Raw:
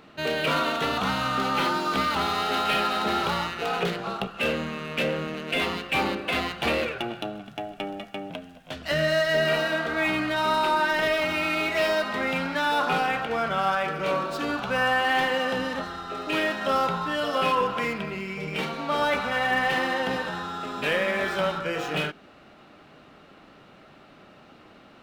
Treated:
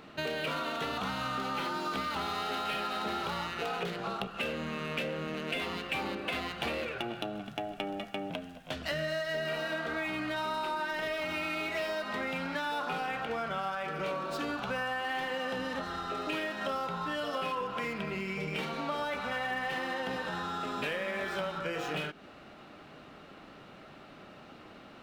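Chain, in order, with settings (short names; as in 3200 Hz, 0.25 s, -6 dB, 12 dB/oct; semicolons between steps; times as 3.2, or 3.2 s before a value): compressor, threshold -32 dBFS, peak gain reduction 12 dB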